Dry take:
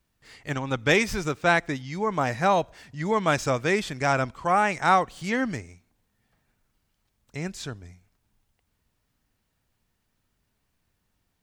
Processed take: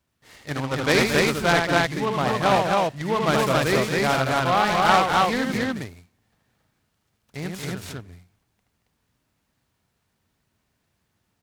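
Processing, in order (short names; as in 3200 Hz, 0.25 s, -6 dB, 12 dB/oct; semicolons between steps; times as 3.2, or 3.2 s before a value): HPF 67 Hz; on a send: loudspeakers at several distances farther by 26 m -4 dB, 78 m -7 dB, 94 m -1 dB; on the sum: noise-modulated delay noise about 1800 Hz, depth 0.047 ms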